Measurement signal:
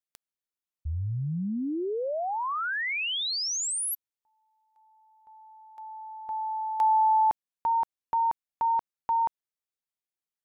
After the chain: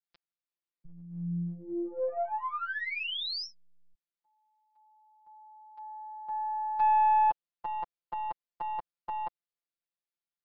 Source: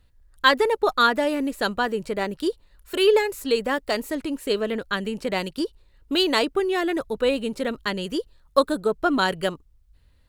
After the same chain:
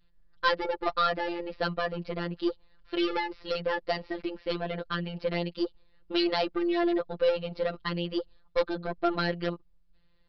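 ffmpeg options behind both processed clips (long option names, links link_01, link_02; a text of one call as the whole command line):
ffmpeg -i in.wav -af "adynamicequalizer=threshold=0.02:dfrequency=580:dqfactor=1.3:tfrequency=580:tqfactor=1.3:attack=5:release=100:ratio=0.375:range=2:mode=boostabove:tftype=bell,aeval=exprs='0.794*(cos(1*acos(clip(val(0)/0.794,-1,1)))-cos(1*PI/2))+0.112*(cos(4*acos(clip(val(0)/0.794,-1,1)))-cos(4*PI/2))+0.0141*(cos(7*acos(clip(val(0)/0.794,-1,1)))-cos(7*PI/2))':channel_layout=same,aresample=11025,asoftclip=type=tanh:threshold=-17dB,aresample=44100,afftfilt=real='hypot(re,im)*cos(PI*b)':imag='0':win_size=1024:overlap=0.75" out.wav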